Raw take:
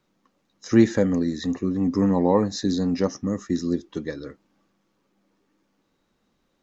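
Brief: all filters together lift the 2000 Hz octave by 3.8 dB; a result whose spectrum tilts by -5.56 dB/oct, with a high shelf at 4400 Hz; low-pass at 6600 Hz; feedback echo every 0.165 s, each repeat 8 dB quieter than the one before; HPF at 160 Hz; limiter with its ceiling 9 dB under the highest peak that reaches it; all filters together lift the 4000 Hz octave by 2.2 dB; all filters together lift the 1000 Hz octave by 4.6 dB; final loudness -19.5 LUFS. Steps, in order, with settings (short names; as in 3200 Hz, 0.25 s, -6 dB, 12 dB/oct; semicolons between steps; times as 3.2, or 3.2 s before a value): HPF 160 Hz; LPF 6600 Hz; bell 1000 Hz +5 dB; bell 2000 Hz +3 dB; bell 4000 Hz +6.5 dB; high shelf 4400 Hz -7.5 dB; limiter -14 dBFS; feedback echo 0.165 s, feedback 40%, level -8 dB; gain +5.5 dB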